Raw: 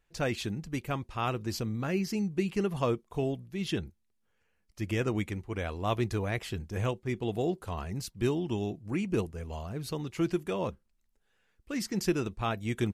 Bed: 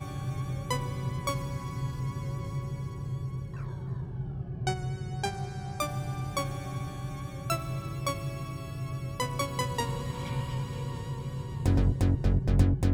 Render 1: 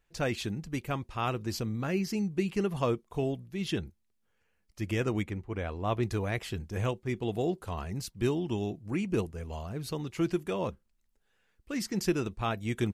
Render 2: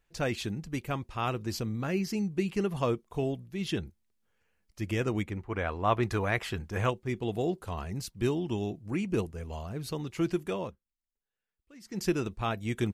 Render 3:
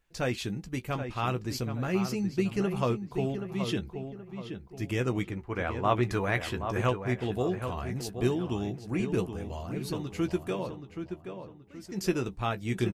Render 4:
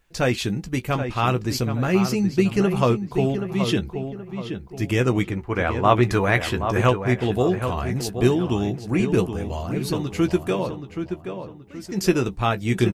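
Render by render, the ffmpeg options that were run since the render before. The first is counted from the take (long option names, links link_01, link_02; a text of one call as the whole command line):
ffmpeg -i in.wav -filter_complex "[0:a]asettb=1/sr,asplit=3[link_01][link_02][link_03];[link_01]atrim=end=5.234[link_04];[link_02]atrim=start=5.23:end=6.03,asetpts=PTS-STARTPTS,afade=type=in:duration=0.004:curve=qsin,afade=type=out:start_time=0.796:duration=0.004:curve=qsin,highshelf=frequency=3400:gain=-10[link_05];[link_03]atrim=start=6.026[link_06];[link_04][link_05]acrossfade=duration=0.004:curve1=hsin:curve2=qsin[link_07];[link_07][link_06]acrossfade=duration=0.004:curve1=qsin:curve2=hsin" out.wav
ffmpeg -i in.wav -filter_complex "[0:a]asettb=1/sr,asplit=3[link_01][link_02][link_03];[link_01]atrim=end=5.374[link_04];[link_02]atrim=start=5.37:end=6.9,asetpts=PTS-STARTPTS,afade=type=in:duration=0.004:curve=qsin,afade=type=out:start_time=1.526:duration=0.004:curve=qsin,equalizer=frequency=1300:width=0.65:gain=8[link_05];[link_03]atrim=start=6.896[link_06];[link_04][link_05]acrossfade=duration=0.004:curve1=hsin:curve2=qsin[link_07];[link_07][link_06]acrossfade=duration=0.004:curve1=qsin:curve2=hsin,asplit=3[link_08][link_09][link_10];[link_08]atrim=end=10.79,asetpts=PTS-STARTPTS,afade=type=out:start_time=10.53:duration=0.26:silence=0.112202[link_11];[link_09]atrim=start=10.79:end=11.82,asetpts=PTS-STARTPTS,volume=-19dB[link_12];[link_10]atrim=start=11.82,asetpts=PTS-STARTPTS,afade=type=in:duration=0.26:silence=0.112202[link_13];[link_11][link_12][link_13]concat=n=3:v=0:a=1" out.wav
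ffmpeg -i in.wav -filter_complex "[0:a]asplit=2[link_01][link_02];[link_02]adelay=16,volume=-9.5dB[link_03];[link_01][link_03]amix=inputs=2:normalize=0,asplit=2[link_04][link_05];[link_05]adelay=776,lowpass=frequency=2500:poles=1,volume=-8dB,asplit=2[link_06][link_07];[link_07]adelay=776,lowpass=frequency=2500:poles=1,volume=0.38,asplit=2[link_08][link_09];[link_09]adelay=776,lowpass=frequency=2500:poles=1,volume=0.38,asplit=2[link_10][link_11];[link_11]adelay=776,lowpass=frequency=2500:poles=1,volume=0.38[link_12];[link_06][link_08][link_10][link_12]amix=inputs=4:normalize=0[link_13];[link_04][link_13]amix=inputs=2:normalize=0" out.wav
ffmpeg -i in.wav -af "volume=9dB" out.wav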